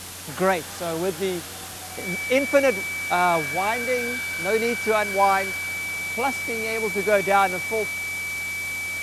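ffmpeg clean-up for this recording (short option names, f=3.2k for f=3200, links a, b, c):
-af "adeclick=t=4,bandreject=f=91.2:t=h:w=4,bandreject=f=182.4:t=h:w=4,bandreject=f=273.6:t=h:w=4,bandreject=f=364.8:t=h:w=4,bandreject=f=2.3k:w=30,afwtdn=0.016"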